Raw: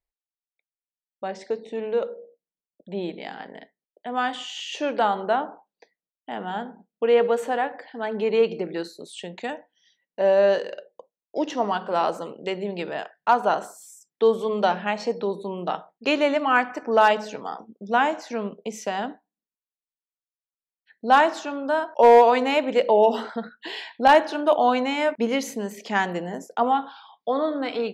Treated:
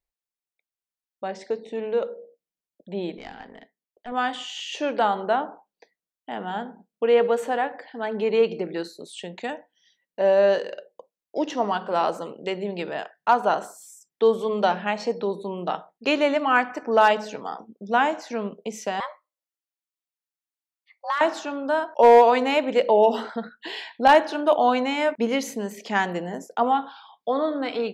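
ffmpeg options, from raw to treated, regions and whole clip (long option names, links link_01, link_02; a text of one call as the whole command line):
ffmpeg -i in.wav -filter_complex "[0:a]asettb=1/sr,asplit=3[link_01][link_02][link_03];[link_01]atrim=end=3.174[link_04];[link_02]atrim=start=3.17:end=4.12,asetpts=PTS-STARTPTS,afade=type=in:duration=0.004:curve=qsin,afade=type=out:start_time=0.946:duration=0.004:curve=qsin,aeval=exprs='(tanh(14.1*val(0)+0.65)-tanh(0.65))/14.1':channel_layout=same,equalizer=frequency=240:width_type=o:width=0.21:gain=5,bandreject=frequency=580:width=9.3[link_05];[link_03]atrim=start=4.116[link_06];[link_04][link_05]acrossfade=duration=0.004:curve1=hsin:curve2=qsin[link_07];[link_07][link_06]acrossfade=duration=0.004:curve1=qsin:curve2=hsin,asettb=1/sr,asplit=3[link_08][link_09][link_10];[link_08]atrim=end=19.004[link_11];[link_09]atrim=start=19:end=21.21,asetpts=PTS-STARTPTS,afade=type=in:duration=0.004:curve=qsin,afade=type=out:start_time=2.206:duration=0.004:curve=qsin,equalizer=frequency=140:width=0.84:gain=-14,acompressor=threshold=-21dB:ratio=10:attack=3.2:release=140:knee=1:detection=peak,afreqshift=310[link_12];[link_10]atrim=start=21.206[link_13];[link_11][link_12]acrossfade=duration=0.004:curve1=hsin:curve2=qsin[link_14];[link_14][link_13]acrossfade=duration=0.004:curve1=qsin:curve2=hsin" out.wav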